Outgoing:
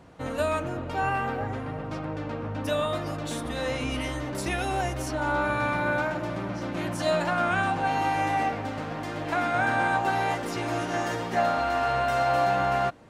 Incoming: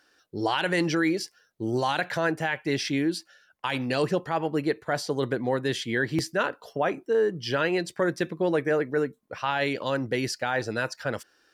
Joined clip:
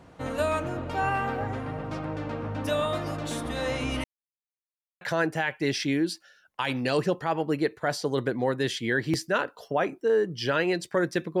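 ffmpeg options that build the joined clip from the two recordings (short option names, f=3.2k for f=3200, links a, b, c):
-filter_complex "[0:a]apad=whole_dur=11.4,atrim=end=11.4,asplit=2[a][b];[a]atrim=end=4.04,asetpts=PTS-STARTPTS,afade=t=out:st=4.036:d=0.004:c=hsin[c];[b]atrim=start=4.04:end=5.01,asetpts=PTS-STARTPTS,volume=0[d];[1:a]atrim=start=2.06:end=8.45,asetpts=PTS-STARTPTS,afade=t=in:d=0.004:c=hsin[e];[c][d][e]concat=n=3:v=0:a=1"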